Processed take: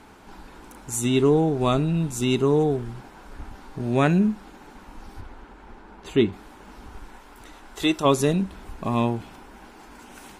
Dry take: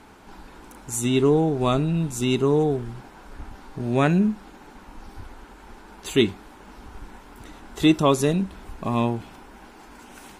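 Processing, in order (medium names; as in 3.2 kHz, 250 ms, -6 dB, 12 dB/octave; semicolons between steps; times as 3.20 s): 5.20–6.32 s: low-pass 3.6 kHz -> 1.4 kHz 6 dB/octave; 6.98–8.04 s: peaking EQ 120 Hz -5.5 dB -> -13 dB 2.6 oct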